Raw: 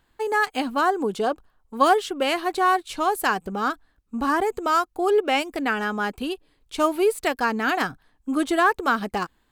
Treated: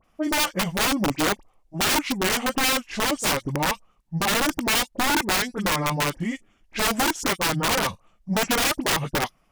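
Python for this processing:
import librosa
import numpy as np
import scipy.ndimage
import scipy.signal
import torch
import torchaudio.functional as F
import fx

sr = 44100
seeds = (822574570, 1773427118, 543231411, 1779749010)

y = fx.pitch_heads(x, sr, semitones=-6.0)
y = fx.dispersion(y, sr, late='highs', ms=42.0, hz=2000.0)
y = (np.mod(10.0 ** (19.5 / 20.0) * y + 1.0, 2.0) - 1.0) / 10.0 ** (19.5 / 20.0)
y = y * 10.0 ** (3.0 / 20.0)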